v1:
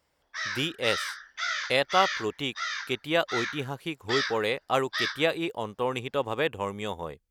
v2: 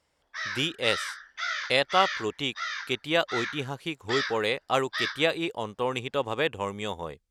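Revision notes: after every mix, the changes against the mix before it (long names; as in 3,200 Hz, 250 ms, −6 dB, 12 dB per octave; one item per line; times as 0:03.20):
speech: add high-shelf EQ 4,600 Hz +11 dB
master: add high-frequency loss of the air 61 metres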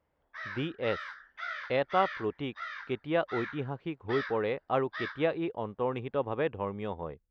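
speech: add high-shelf EQ 4,600 Hz −11 dB
master: add head-to-tape spacing loss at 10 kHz 38 dB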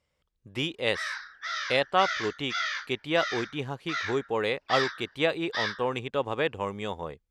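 background: entry +0.60 s
master: remove head-to-tape spacing loss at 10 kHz 38 dB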